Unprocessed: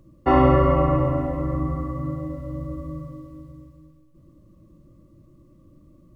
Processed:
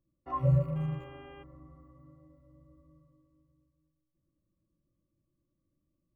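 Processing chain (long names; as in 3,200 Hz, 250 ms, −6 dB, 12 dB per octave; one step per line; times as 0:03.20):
loose part that buzzes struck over −17 dBFS, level −25 dBFS
noise reduction from a noise print of the clip's start 28 dB
0:00.75–0:01.42: hum with harmonics 400 Hz, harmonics 8, −51 dBFS −5 dB per octave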